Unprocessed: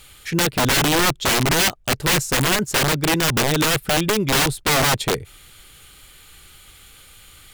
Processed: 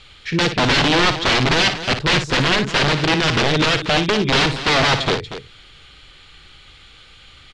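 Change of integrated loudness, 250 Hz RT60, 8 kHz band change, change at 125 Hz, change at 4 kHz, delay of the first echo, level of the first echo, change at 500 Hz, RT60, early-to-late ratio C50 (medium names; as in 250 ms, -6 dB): +2.0 dB, no reverb, -8.0 dB, +2.0 dB, +3.5 dB, 57 ms, -9.5 dB, +2.0 dB, no reverb, no reverb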